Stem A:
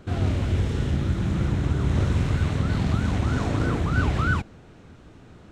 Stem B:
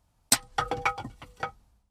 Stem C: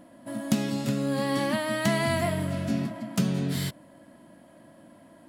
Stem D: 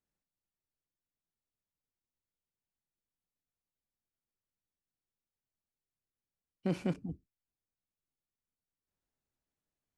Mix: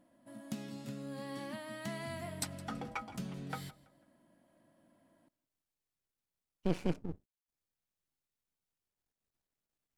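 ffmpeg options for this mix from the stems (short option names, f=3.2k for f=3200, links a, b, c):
-filter_complex "[1:a]dynaudnorm=f=480:g=3:m=11.5dB,adelay=2100,volume=-17.5dB,asplit=2[a][b];[b]volume=-19dB[c];[2:a]volume=-16.5dB,asplit=2[d][e];[e]volume=-23dB[f];[3:a]aeval=exprs='max(val(0),0)':c=same,volume=3dB[g];[c][f]amix=inputs=2:normalize=0,aecho=0:1:165|330|495|660:1|0.31|0.0961|0.0298[h];[a][d][g][h]amix=inputs=4:normalize=0"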